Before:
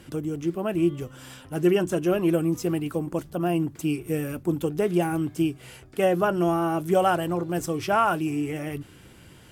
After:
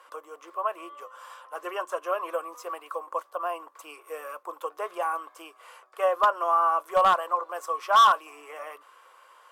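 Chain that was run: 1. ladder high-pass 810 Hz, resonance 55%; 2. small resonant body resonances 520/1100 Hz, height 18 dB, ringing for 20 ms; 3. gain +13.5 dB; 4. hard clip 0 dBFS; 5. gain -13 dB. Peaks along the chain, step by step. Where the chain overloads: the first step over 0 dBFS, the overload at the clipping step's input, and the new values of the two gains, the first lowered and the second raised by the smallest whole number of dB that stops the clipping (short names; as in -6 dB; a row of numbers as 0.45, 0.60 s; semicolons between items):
-15.5, -3.5, +10.0, 0.0, -13.0 dBFS; step 3, 10.0 dB; step 3 +3.5 dB, step 5 -3 dB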